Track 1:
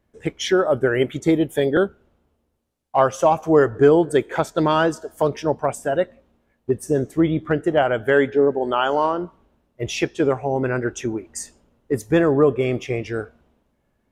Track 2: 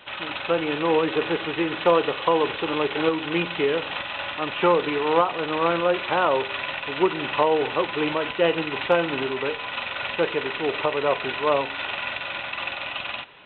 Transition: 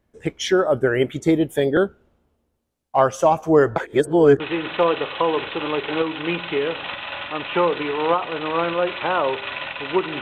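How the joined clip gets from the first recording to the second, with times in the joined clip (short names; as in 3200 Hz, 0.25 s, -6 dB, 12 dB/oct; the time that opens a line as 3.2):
track 1
3.76–4.4 reverse
4.4 switch to track 2 from 1.47 s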